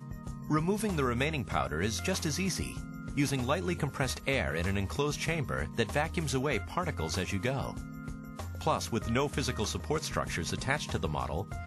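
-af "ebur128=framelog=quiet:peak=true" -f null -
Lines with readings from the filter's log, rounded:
Integrated loudness:
  I:         -32.3 LUFS
  Threshold: -42.5 LUFS
Loudness range:
  LRA:         1.9 LU
  Threshold: -52.5 LUFS
  LRA low:   -33.6 LUFS
  LRA high:  -31.7 LUFS
True peak:
  Peak:      -13.4 dBFS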